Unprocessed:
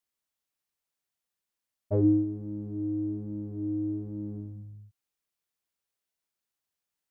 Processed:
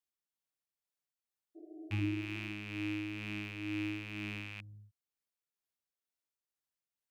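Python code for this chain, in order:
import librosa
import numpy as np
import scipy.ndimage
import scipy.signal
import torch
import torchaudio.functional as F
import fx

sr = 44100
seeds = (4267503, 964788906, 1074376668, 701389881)

y = fx.rattle_buzz(x, sr, strikes_db=-40.0, level_db=-23.0)
y = y * (1.0 - 0.35 / 2.0 + 0.35 / 2.0 * np.cos(2.0 * np.pi * 2.1 * (np.arange(len(y)) / sr)))
y = fx.spec_repair(y, sr, seeds[0], start_s=1.58, length_s=0.91, low_hz=320.0, high_hz=740.0, source='after')
y = y * 10.0 ** (-6.5 / 20.0)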